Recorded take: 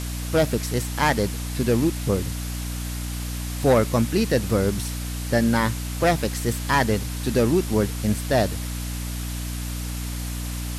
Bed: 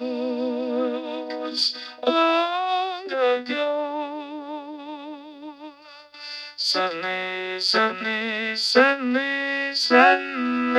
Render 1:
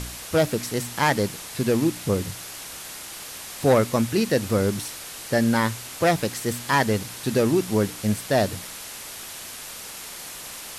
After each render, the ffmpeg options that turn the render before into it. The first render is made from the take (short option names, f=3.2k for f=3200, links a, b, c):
-af "bandreject=f=60:t=h:w=4,bandreject=f=120:t=h:w=4,bandreject=f=180:t=h:w=4,bandreject=f=240:t=h:w=4,bandreject=f=300:t=h:w=4"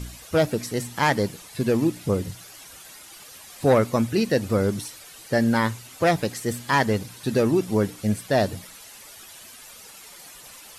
-af "afftdn=nr=11:nf=-38"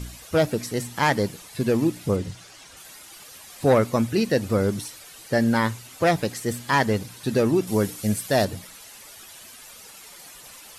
-filter_complex "[0:a]asettb=1/sr,asplit=3[a][b][c];[a]atrim=end=2.164[d];[b]atrim=start=2.16:end=2.77,asetpts=PTS-STARTPTS,afade=t=in:d=0.004:c=qsin,afade=t=out:st=0.606:d=0.004:c=qsin,lowpass=7.5k[e];[c]atrim=start=2.766[f];[d][e]acrossfade=d=0.004:c1=hsin:c2=qsin[g];[g][f]acrossfade=d=0.004:c1=qsin:c2=hsin,asettb=1/sr,asplit=3[h][i][j];[h]atrim=end=7.674[k];[i]atrim=start=7.67:end=8.45,asetpts=PTS-STARTPTS,afade=t=in:d=0.004:c=qsin,afade=t=out:st=0.776:d=0.004:c=qsin,aemphasis=mode=production:type=cd[l];[j]atrim=start=8.446[m];[k][l]acrossfade=d=0.004:c1=hsin:c2=qsin[n];[n][m]acrossfade=d=0.004:c1=qsin:c2=hsin"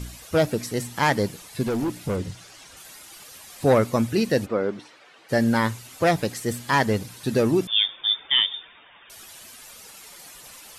-filter_complex "[0:a]asettb=1/sr,asplit=3[a][b][c];[a]atrim=end=1.634[d];[b]atrim=start=1.63:end=2.2,asetpts=PTS-STARTPTS,afade=t=in:d=0.004:c=qsin,afade=t=out:st=0.566:d=0.004:c=qsin,asoftclip=type=hard:threshold=-22dB[e];[c]atrim=start=2.196[f];[d][e]acrossfade=d=0.004:c1=hsin:c2=qsin[g];[g][f]acrossfade=d=0.004:c1=qsin:c2=hsin,asplit=3[h][i][j];[h]afade=t=out:st=4.45:d=0.02[k];[i]highpass=290,lowpass=2.5k,afade=t=in:st=4.45:d=0.02,afade=t=out:st=5.28:d=0.02[l];[j]afade=t=in:st=5.28:d=0.02[m];[k][l][m]amix=inputs=3:normalize=0,asettb=1/sr,asplit=3[n][o][p];[n]atrim=end=7.674[q];[o]atrim=start=7.67:end=9.1,asetpts=PTS-STARTPTS,afade=t=in:d=0.004:c=qsin,afade=t=out:st=1.426:d=0.004:c=qsin,lowpass=f=3.1k:t=q:w=0.5098,lowpass=f=3.1k:t=q:w=0.6013,lowpass=f=3.1k:t=q:w=0.9,lowpass=f=3.1k:t=q:w=2.563,afreqshift=-3700[r];[p]atrim=start=9.096[s];[q][r]acrossfade=d=0.004:c1=hsin:c2=qsin[t];[t][s]acrossfade=d=0.004:c1=qsin:c2=hsin"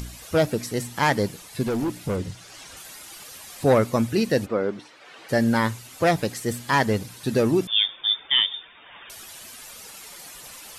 -af "acompressor=mode=upward:threshold=-36dB:ratio=2.5"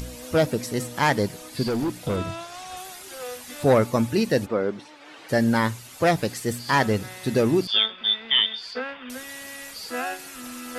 -filter_complex "[1:a]volume=-15.5dB[a];[0:a][a]amix=inputs=2:normalize=0"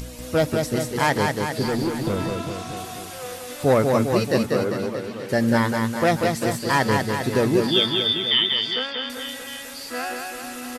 -af "aecho=1:1:190|399|628.9|881.8|1160:0.631|0.398|0.251|0.158|0.1"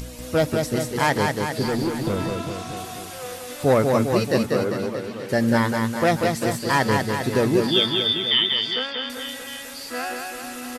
-af anull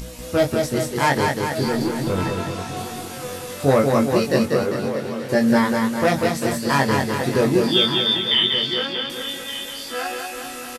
-filter_complex "[0:a]asplit=2[a][b];[b]adelay=22,volume=-3.5dB[c];[a][c]amix=inputs=2:normalize=0,aecho=1:1:1174:0.188"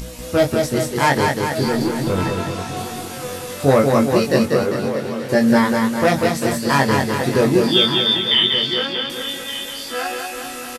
-af "volume=2.5dB"